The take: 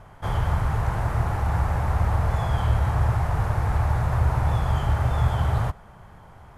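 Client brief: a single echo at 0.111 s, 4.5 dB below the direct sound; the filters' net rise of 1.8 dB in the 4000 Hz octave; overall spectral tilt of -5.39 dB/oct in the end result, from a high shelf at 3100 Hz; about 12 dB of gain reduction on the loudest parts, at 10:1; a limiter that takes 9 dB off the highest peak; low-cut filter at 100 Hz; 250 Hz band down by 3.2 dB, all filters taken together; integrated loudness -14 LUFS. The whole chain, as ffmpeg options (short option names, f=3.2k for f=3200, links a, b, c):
-af "highpass=100,equalizer=f=250:t=o:g=-5.5,highshelf=f=3.1k:g=-5.5,equalizer=f=4k:t=o:g=6.5,acompressor=threshold=-34dB:ratio=10,alimiter=level_in=10dB:limit=-24dB:level=0:latency=1,volume=-10dB,aecho=1:1:111:0.596,volume=28dB"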